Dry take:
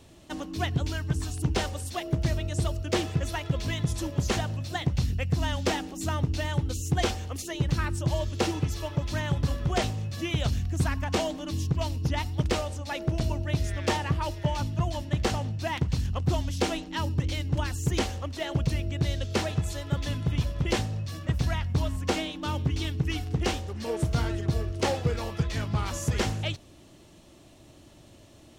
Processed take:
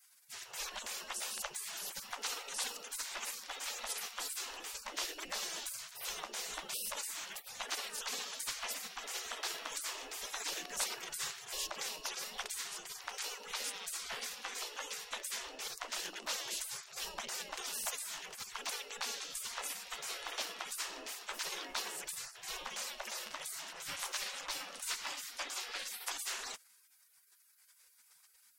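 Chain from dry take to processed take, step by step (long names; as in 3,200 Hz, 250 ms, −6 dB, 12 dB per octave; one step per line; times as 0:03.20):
mains-hum notches 60/120/180/240/300/360 Hz
gate on every frequency bin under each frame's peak −30 dB weak
level +6.5 dB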